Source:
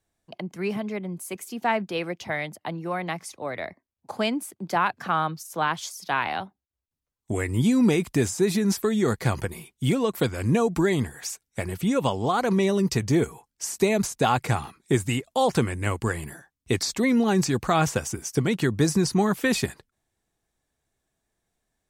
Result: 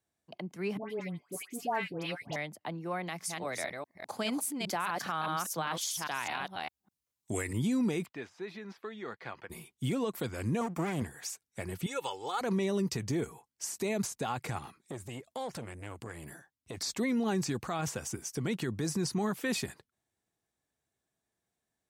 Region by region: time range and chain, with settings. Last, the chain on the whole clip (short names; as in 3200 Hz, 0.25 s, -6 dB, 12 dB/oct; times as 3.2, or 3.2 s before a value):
0.77–2.36 comb 7 ms, depth 58% + dispersion highs, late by 0.128 s, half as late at 1300 Hz
3.03–7.53 reverse delay 0.203 s, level -4 dB + high shelf 2600 Hz +9.5 dB
8.06–9.5 de-esser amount 60% + HPF 1400 Hz 6 dB/oct + air absorption 320 m
10.61–11.02 minimum comb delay 0.87 ms + HPF 120 Hz + bell 3900 Hz -7.5 dB 0.59 oct
11.86–12.41 HPF 1200 Hz 6 dB/oct + comb 2.3 ms, depth 74%
14.58–16.77 compressor 2.5:1, threshold -31 dBFS + core saturation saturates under 660 Hz
whole clip: HPF 85 Hz; limiter -17 dBFS; gain -6.5 dB